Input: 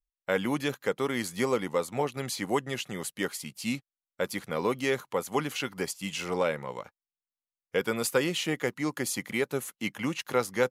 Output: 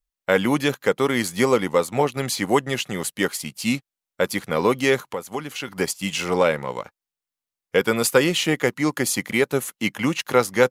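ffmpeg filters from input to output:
-filter_complex "[0:a]asplit=2[s0][s1];[s1]aeval=exprs='sgn(val(0))*max(abs(val(0))-0.00501,0)':c=same,volume=0.501[s2];[s0][s2]amix=inputs=2:normalize=0,asettb=1/sr,asplit=3[s3][s4][s5];[s3]atrim=end=5.034[s6];[s4]atrim=start=5.03:end=5.68,asetpts=PTS-STARTPTS,afade=t=in:d=0.004:c=qsin,afade=t=out:st=0.646:d=0.004:c=qsin,acompressor=threshold=0.0126:ratio=2[s7];[s5]atrim=start=5.676[s8];[s6][s7]acrossfade=d=0.004:c1=hsin:c2=qsin[s9];[s9][s8]acrossfade=d=0.004:c1=qsin:c2=hsin,volume=1.88"

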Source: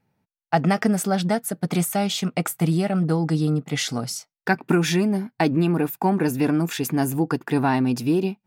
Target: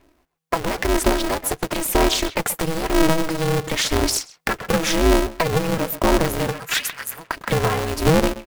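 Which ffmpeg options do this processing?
-filter_complex "[0:a]dynaudnorm=f=290:g=13:m=3.76,alimiter=limit=0.224:level=0:latency=1:release=469,acompressor=threshold=0.0501:ratio=12,asplit=3[s0][s1][s2];[s0]afade=t=out:st=6.51:d=0.02[s3];[s1]highpass=f=1600:t=q:w=1.7,afade=t=in:st=6.51:d=0.02,afade=t=out:st=7.36:d=0.02[s4];[s2]afade=t=in:st=7.36:d=0.02[s5];[s3][s4][s5]amix=inputs=3:normalize=0,acrusher=bits=4:mode=log:mix=0:aa=0.000001,aphaser=in_gain=1:out_gain=1:delay=3.5:decay=0.56:speed=0.98:type=sinusoidal,asplit=2[s6][s7];[s7]adelay=130,highpass=300,lowpass=3400,asoftclip=type=hard:threshold=0.0708,volume=0.282[s8];[s6][s8]amix=inputs=2:normalize=0,aeval=exprs='val(0)*sgn(sin(2*PI*160*n/s))':c=same,volume=2.37"

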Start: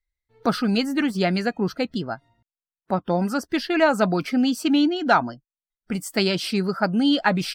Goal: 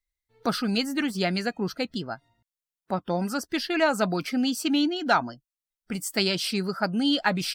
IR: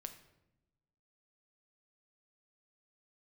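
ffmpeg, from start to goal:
-af "highshelf=f=2800:g=7.5,volume=0.562"

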